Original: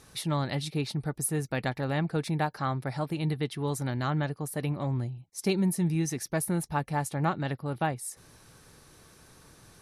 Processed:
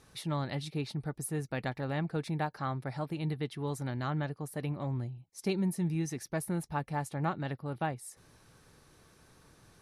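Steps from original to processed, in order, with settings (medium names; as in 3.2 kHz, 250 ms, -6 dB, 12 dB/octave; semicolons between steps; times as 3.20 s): treble shelf 5.2 kHz -5.5 dB; trim -4.5 dB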